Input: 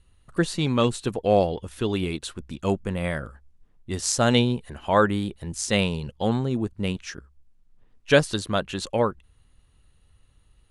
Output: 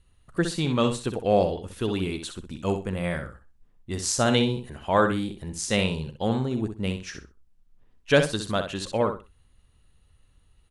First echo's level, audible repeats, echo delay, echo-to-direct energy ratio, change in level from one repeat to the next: -8.0 dB, 2, 63 ms, -8.0 dB, -13.5 dB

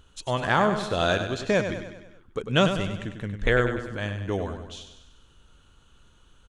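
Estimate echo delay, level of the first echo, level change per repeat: 98 ms, -8.5 dB, -5.5 dB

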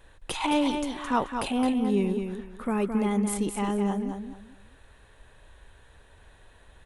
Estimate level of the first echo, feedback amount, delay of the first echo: -6.5 dB, 25%, 0.216 s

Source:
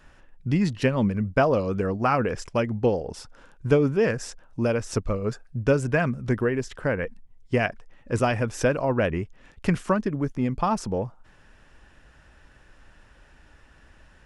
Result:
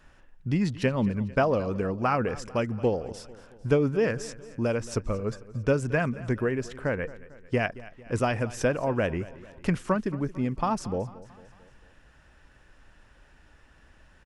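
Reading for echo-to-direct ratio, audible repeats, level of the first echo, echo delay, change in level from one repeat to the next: -17.0 dB, 3, -18.5 dB, 0.224 s, -5.5 dB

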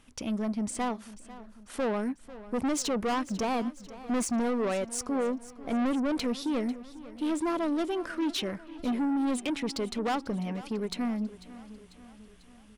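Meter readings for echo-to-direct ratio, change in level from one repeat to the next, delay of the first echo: -15.5 dB, -5.0 dB, 0.495 s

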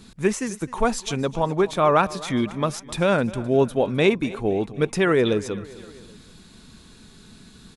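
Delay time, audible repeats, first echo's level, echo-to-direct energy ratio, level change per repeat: 0.259 s, 3, -19.0 dB, -17.5 dB, -5.0 dB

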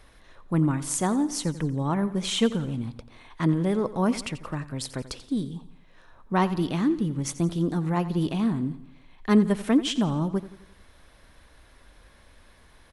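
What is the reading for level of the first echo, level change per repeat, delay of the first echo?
-15.5 dB, -6.0 dB, 87 ms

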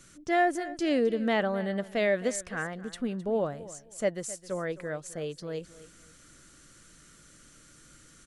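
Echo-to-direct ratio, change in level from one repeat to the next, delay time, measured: -17.0 dB, -13.0 dB, 0.262 s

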